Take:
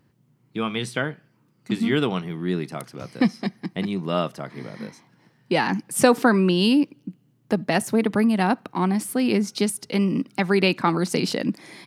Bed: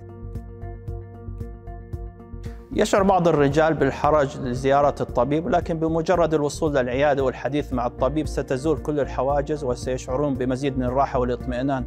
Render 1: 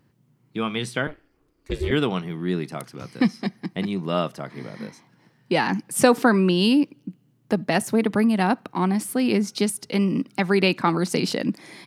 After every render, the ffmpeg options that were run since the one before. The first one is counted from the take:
ffmpeg -i in.wav -filter_complex "[0:a]asettb=1/sr,asplit=3[link_01][link_02][link_03];[link_01]atrim=end=1.074[link_04];[link_02]atrim=start=1.07:end=1.91,asetpts=PTS-STARTPTS,afade=type=in:duration=0.004:curve=qsin,afade=type=out:start_time=0.836:duration=0.004:curve=qsin,aeval=exprs='val(0)*sin(2*PI*150*n/s)':channel_layout=same[link_05];[link_03]atrim=start=1.906[link_06];[link_04][link_05]acrossfade=duration=0.004:curve1=hsin:curve2=qsin[link_07];[link_07][link_06]acrossfade=duration=0.004:curve1=qsin:curve2=hsin,asettb=1/sr,asplit=3[link_08][link_09][link_10];[link_08]atrim=end=2.894[link_11];[link_09]atrim=start=2.89:end=3.44,asetpts=PTS-STARTPTS,afade=type=in:duration=0.004:curve=qsin,afade=type=out:start_time=0.546:duration=0.004:curve=qsin,equalizer=frequency=610:width_type=o:width=0.44:gain=-6.5[link_12];[link_10]atrim=start=3.436[link_13];[link_11][link_12]acrossfade=duration=0.004:curve1=hsin:curve2=qsin[link_14];[link_14][link_13]acrossfade=duration=0.004:curve1=qsin:curve2=hsin" out.wav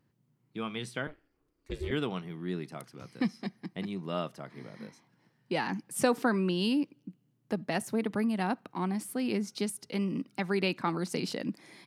ffmpeg -i in.wav -af "volume=-10dB" out.wav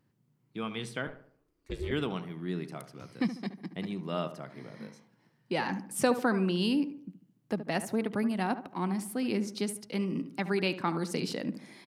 ffmpeg -i in.wav -filter_complex "[0:a]asplit=2[link_01][link_02];[link_02]adelay=73,lowpass=frequency=1600:poles=1,volume=-11dB,asplit=2[link_03][link_04];[link_04]adelay=73,lowpass=frequency=1600:poles=1,volume=0.45,asplit=2[link_05][link_06];[link_06]adelay=73,lowpass=frequency=1600:poles=1,volume=0.45,asplit=2[link_07][link_08];[link_08]adelay=73,lowpass=frequency=1600:poles=1,volume=0.45,asplit=2[link_09][link_10];[link_10]adelay=73,lowpass=frequency=1600:poles=1,volume=0.45[link_11];[link_01][link_03][link_05][link_07][link_09][link_11]amix=inputs=6:normalize=0" out.wav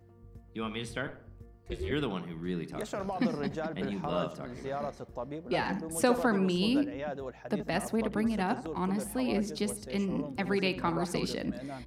ffmpeg -i in.wav -i bed.wav -filter_complex "[1:a]volume=-18dB[link_01];[0:a][link_01]amix=inputs=2:normalize=0" out.wav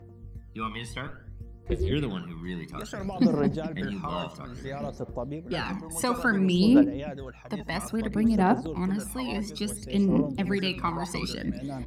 ffmpeg -i in.wav -af "aphaser=in_gain=1:out_gain=1:delay=1.1:decay=0.69:speed=0.59:type=triangular" out.wav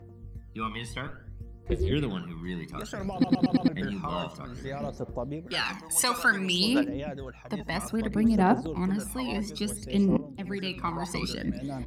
ffmpeg -i in.wav -filter_complex "[0:a]asettb=1/sr,asplit=3[link_01][link_02][link_03];[link_01]atrim=end=5.474[link_04];[link_02]atrim=start=5.47:end=6.89,asetpts=PTS-STARTPTS,afade=type=in:duration=0.004:curve=qsin,afade=type=out:start_time=1.416:duration=0.004:curve=qsin,tiltshelf=frequency=970:gain=-9[link_05];[link_03]atrim=start=6.886[link_06];[link_04][link_05]acrossfade=duration=0.004:curve1=hsin:curve2=qsin[link_07];[link_07][link_06]acrossfade=duration=0.004:curve1=qsin:curve2=hsin,asplit=7[link_08][link_09][link_10][link_11][link_12][link_13][link_14];[link_08]atrim=end=3.242[link_15];[link_09]atrim=start=3.128:end=3.242[link_16];[link_10]atrim=start=3.128:end=3.242[link_17];[link_11]atrim=start=3.128:end=3.242[link_18];[link_12]atrim=start=3.128:end=3.242[link_19];[link_13]atrim=start=3.678:end=10.17,asetpts=PTS-STARTPTS,afade=type=out:start_time=6.488:duration=0.004:curve=hsin:silence=0.188365[link_20];[link_14]atrim=start=10.17,asetpts=PTS-STARTPTS,afade=type=in:duration=1:silence=0.188365[link_21];[link_15][link_16]acrossfade=duration=0.004:curve1=hsin:curve2=hsin[link_22];[link_22][link_17]acrossfade=duration=0.004:curve1=hsin:curve2=hsin[link_23];[link_23][link_18]acrossfade=duration=0.004:curve1=hsin:curve2=hsin[link_24];[link_24][link_19]acrossfade=duration=0.004:curve1=hsin:curve2=hsin[link_25];[link_20][link_21]concat=n=2:v=0:a=1[link_26];[link_25][link_26]acrossfade=duration=0.004:curve1=hsin:curve2=hsin" out.wav

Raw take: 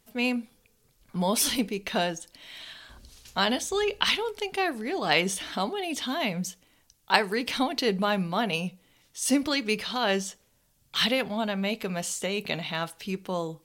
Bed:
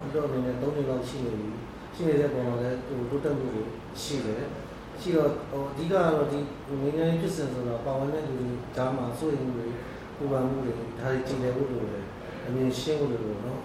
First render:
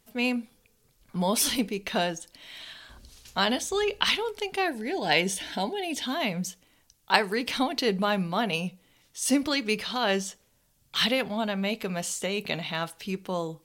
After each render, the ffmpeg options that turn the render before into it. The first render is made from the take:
ffmpeg -i in.wav -filter_complex "[0:a]asettb=1/sr,asplit=3[link_01][link_02][link_03];[link_01]atrim=end=4.684[link_04];[link_02]atrim=start=4.68:end=6.06,asetpts=PTS-STARTPTS,afade=type=in:duration=0.004:curve=qsin,afade=type=out:start_time=1.376:duration=0.004:curve=qsin,asuperstop=centerf=1200:order=8:qfactor=3.7[link_05];[link_03]atrim=start=6.056[link_06];[link_04][link_05]acrossfade=duration=0.004:curve1=hsin:curve2=qsin[link_07];[link_07][link_06]acrossfade=duration=0.004:curve1=qsin:curve2=hsin" out.wav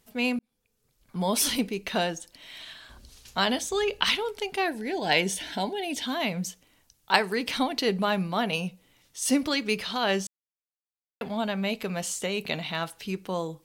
ffmpeg -i in.wav -filter_complex "[0:a]asplit=4[link_01][link_02][link_03][link_04];[link_01]atrim=end=0.39,asetpts=PTS-STARTPTS,afade=type=out:start_time=0.386:duration=0.004:curve=hsin[link_05];[link_02]atrim=start=0.39:end=10.27,asetpts=PTS-STARTPTS,afade=type=in:duration=0.96,afade=type=out:start_time=9.876:duration=0.004:curve=hsin[link_06];[link_03]atrim=start=10.27:end=11.21,asetpts=PTS-STARTPTS,volume=0[link_07];[link_04]atrim=start=11.21,asetpts=PTS-STARTPTS,afade=type=in:duration=0.004:curve=hsin[link_08];[link_05][link_06][link_07][link_08]concat=n=4:v=0:a=1" out.wav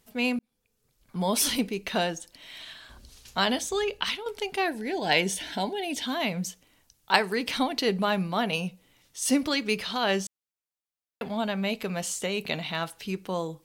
ffmpeg -i in.wav -filter_complex "[0:a]asplit=2[link_01][link_02];[link_01]atrim=end=4.26,asetpts=PTS-STARTPTS,afade=type=out:start_time=3.7:duration=0.56:silence=0.334965[link_03];[link_02]atrim=start=4.26,asetpts=PTS-STARTPTS,afade=type=in:duration=0.004:curve=hsin:silence=0.334965[link_04];[link_03][link_04]concat=n=2:v=0:a=1" out.wav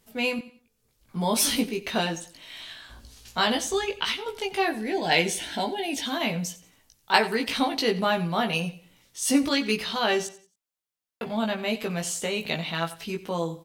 ffmpeg -i in.wav -filter_complex "[0:a]asplit=2[link_01][link_02];[link_02]adelay=18,volume=-3dB[link_03];[link_01][link_03]amix=inputs=2:normalize=0,aecho=1:1:90|180|270:0.141|0.0452|0.0145" out.wav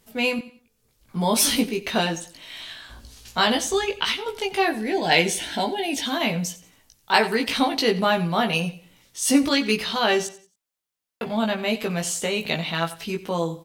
ffmpeg -i in.wav -af "volume=3.5dB,alimiter=limit=-2dB:level=0:latency=1" out.wav

